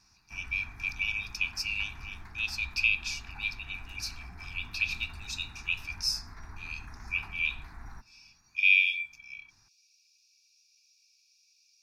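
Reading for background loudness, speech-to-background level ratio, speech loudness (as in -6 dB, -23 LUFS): -49.0 LUFS, 19.0 dB, -30.0 LUFS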